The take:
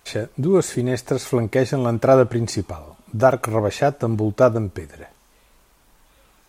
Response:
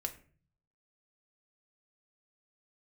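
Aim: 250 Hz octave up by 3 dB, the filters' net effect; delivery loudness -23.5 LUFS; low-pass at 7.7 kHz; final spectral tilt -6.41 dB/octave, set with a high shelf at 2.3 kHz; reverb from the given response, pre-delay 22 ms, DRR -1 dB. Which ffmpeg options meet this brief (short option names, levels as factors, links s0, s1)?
-filter_complex "[0:a]lowpass=7700,equalizer=f=250:t=o:g=4,highshelf=f=2300:g=-5,asplit=2[s0][s1];[1:a]atrim=start_sample=2205,adelay=22[s2];[s1][s2]afir=irnorm=-1:irlink=0,volume=1.12[s3];[s0][s3]amix=inputs=2:normalize=0,volume=0.422"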